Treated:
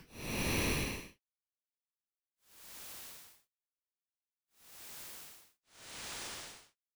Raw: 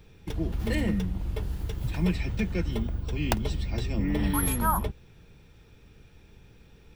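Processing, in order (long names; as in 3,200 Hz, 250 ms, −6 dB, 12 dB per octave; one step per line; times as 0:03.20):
harmonic generator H 5 −13 dB, 6 −11 dB, 7 −34 dB, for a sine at −3.5 dBFS
log-companded quantiser 2 bits
extreme stretch with random phases 23×, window 0.05 s, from 0:06.03
level +5.5 dB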